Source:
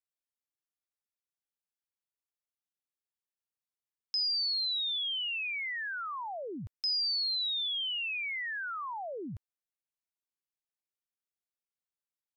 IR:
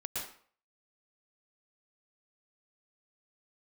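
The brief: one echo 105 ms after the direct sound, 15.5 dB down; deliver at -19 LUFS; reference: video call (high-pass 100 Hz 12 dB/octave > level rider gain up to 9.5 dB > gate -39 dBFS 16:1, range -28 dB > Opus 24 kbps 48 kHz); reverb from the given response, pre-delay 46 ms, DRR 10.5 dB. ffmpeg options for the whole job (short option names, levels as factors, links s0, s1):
-filter_complex "[0:a]aecho=1:1:105:0.168,asplit=2[s0][s1];[1:a]atrim=start_sample=2205,adelay=46[s2];[s1][s2]afir=irnorm=-1:irlink=0,volume=0.237[s3];[s0][s3]amix=inputs=2:normalize=0,highpass=100,dynaudnorm=m=2.99,agate=range=0.0398:threshold=0.0112:ratio=16,volume=3.98" -ar 48000 -c:a libopus -b:a 24k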